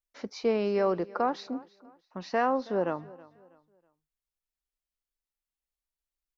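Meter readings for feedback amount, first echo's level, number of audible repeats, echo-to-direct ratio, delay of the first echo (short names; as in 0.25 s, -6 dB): 34%, -21.0 dB, 2, -20.5 dB, 0.323 s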